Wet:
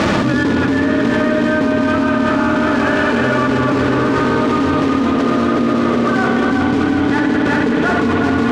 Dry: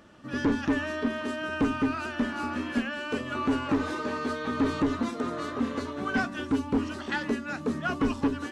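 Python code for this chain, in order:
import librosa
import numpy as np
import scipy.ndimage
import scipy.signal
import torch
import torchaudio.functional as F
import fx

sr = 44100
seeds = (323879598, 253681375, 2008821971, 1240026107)

p1 = scipy.signal.sosfilt(scipy.signal.butter(4, 70.0, 'highpass', fs=sr, output='sos'), x)
p2 = fx.high_shelf(p1, sr, hz=2800.0, db=-8.0)
p3 = fx.notch(p2, sr, hz=2800.0, q=8.3)
p4 = fx.volume_shaper(p3, sr, bpm=140, per_beat=1, depth_db=-10, release_ms=166.0, shape='slow start')
p5 = p3 + (p4 * 10.0 ** (-1.5 / 20.0))
p6 = fx.quant_companded(p5, sr, bits=4)
p7 = fx.air_absorb(p6, sr, metres=120.0)
p8 = p7 + fx.echo_feedback(p7, sr, ms=368, feedback_pct=59, wet_db=-4.0, dry=0)
p9 = fx.rev_spring(p8, sr, rt60_s=3.3, pass_ms=(55,), chirp_ms=25, drr_db=1.0)
y = fx.env_flatten(p9, sr, amount_pct=100)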